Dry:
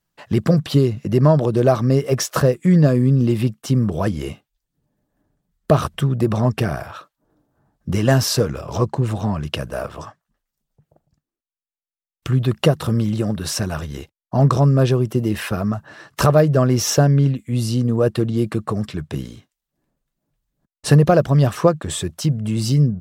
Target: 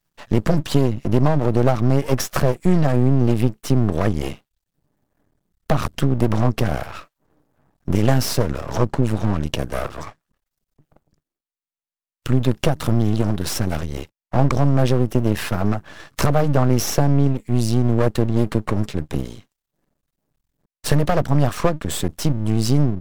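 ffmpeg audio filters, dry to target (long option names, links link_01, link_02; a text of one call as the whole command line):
ffmpeg -i in.wav -filter_complex "[0:a]acrossover=split=320|650[link_01][link_02][link_03];[link_01]acompressor=threshold=-16dB:ratio=4[link_04];[link_02]acompressor=threshold=-28dB:ratio=4[link_05];[link_03]acompressor=threshold=-23dB:ratio=4[link_06];[link_04][link_05][link_06]amix=inputs=3:normalize=0,aeval=exprs='max(val(0),0)':channel_layout=same,volume=5dB" out.wav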